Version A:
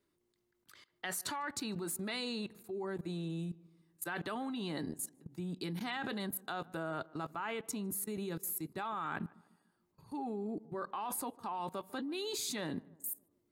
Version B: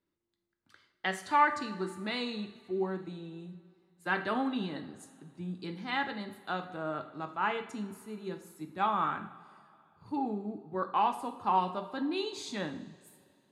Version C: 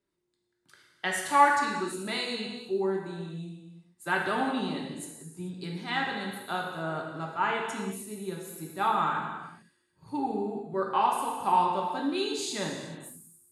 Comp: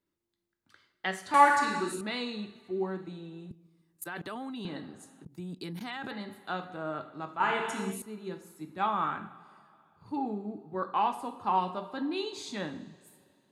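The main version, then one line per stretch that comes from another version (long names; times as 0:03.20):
B
0:01.34–0:02.01: punch in from C
0:03.51–0:04.65: punch in from A
0:05.25–0:06.11: punch in from A
0:07.40–0:08.02: punch in from C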